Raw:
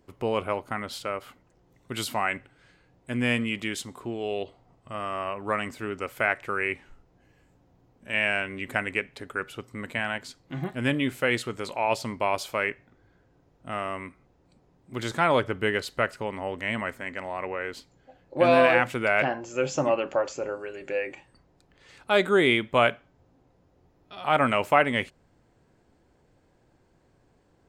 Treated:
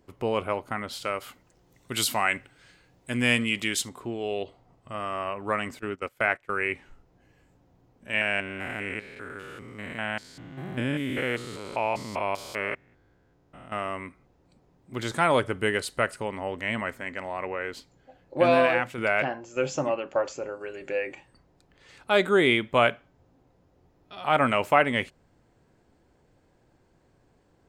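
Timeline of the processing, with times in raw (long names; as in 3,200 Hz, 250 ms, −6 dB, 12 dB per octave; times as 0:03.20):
0:01.02–0:03.89: high-shelf EQ 2,600 Hz +9 dB
0:05.79–0:06.65: noise gate −35 dBFS, range −18 dB
0:08.21–0:13.72: spectrum averaged block by block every 200 ms
0:15.14–0:16.28: parametric band 9,200 Hz +11.5 dB 0.44 octaves
0:18.39–0:20.61: shaped tremolo saw down 1.7 Hz, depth 55%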